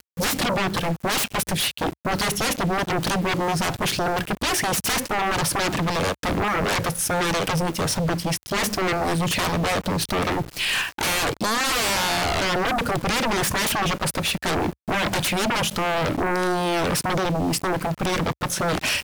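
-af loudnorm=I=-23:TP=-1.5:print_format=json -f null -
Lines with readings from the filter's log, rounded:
"input_i" : "-23.0",
"input_tp" : "-15.8",
"input_lra" : "1.1",
"input_thresh" : "-33.0",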